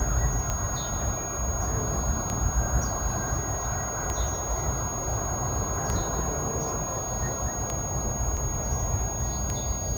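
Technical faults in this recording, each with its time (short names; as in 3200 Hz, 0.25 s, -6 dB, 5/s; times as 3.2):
tick 33 1/3 rpm -14 dBFS
tone 6600 Hz -32 dBFS
8.37 gap 4.9 ms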